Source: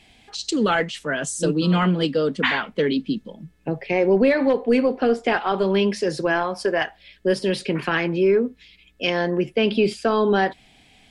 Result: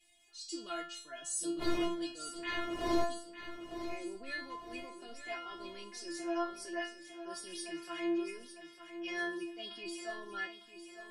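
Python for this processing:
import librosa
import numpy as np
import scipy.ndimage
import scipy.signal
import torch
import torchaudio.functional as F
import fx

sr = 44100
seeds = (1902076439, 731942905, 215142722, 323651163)

y = fx.dmg_wind(x, sr, seeds[0], corner_hz=440.0, level_db=-16.0, at=(1.58, 3.03), fade=0.02)
y = F.preemphasis(torch.from_numpy(y), 0.8).numpy()
y = fx.transient(y, sr, attack_db=-8, sustain_db=-2)
y = fx.stiff_resonator(y, sr, f0_hz=340.0, decay_s=0.47, stiffness=0.002)
y = fx.echo_feedback(y, sr, ms=903, feedback_pct=50, wet_db=-11)
y = y * librosa.db_to_amplitude(11.0)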